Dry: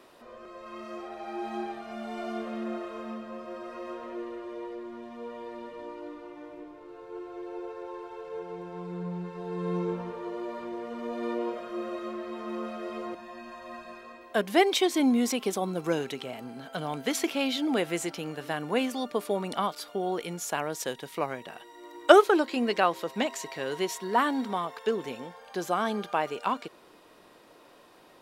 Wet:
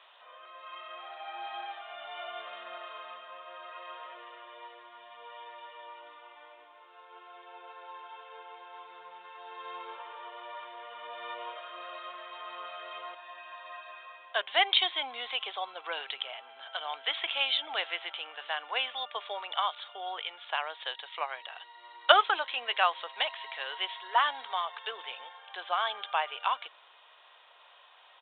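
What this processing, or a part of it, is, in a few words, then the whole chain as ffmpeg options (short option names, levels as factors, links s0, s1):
musical greeting card: -af "aresample=8000,aresample=44100,highpass=f=740:w=0.5412,highpass=f=740:w=1.3066,equalizer=f=3300:t=o:w=0.53:g=9"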